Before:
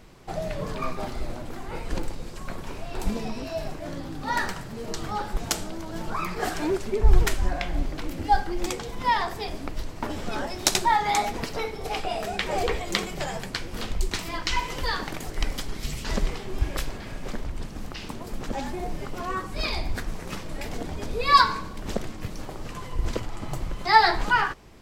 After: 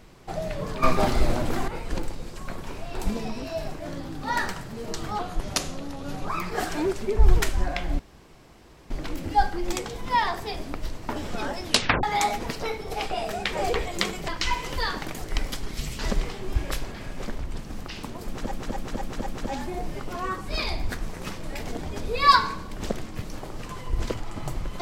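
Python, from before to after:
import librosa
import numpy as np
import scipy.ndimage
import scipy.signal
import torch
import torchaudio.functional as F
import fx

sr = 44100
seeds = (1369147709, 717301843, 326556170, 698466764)

y = fx.edit(x, sr, fx.clip_gain(start_s=0.83, length_s=0.85, db=10.0),
    fx.speed_span(start_s=5.19, length_s=0.94, speed=0.86),
    fx.insert_room_tone(at_s=7.84, length_s=0.91),
    fx.tape_stop(start_s=10.58, length_s=0.39),
    fx.cut(start_s=13.22, length_s=1.12),
    fx.repeat(start_s=18.32, length_s=0.25, count=5), tone=tone)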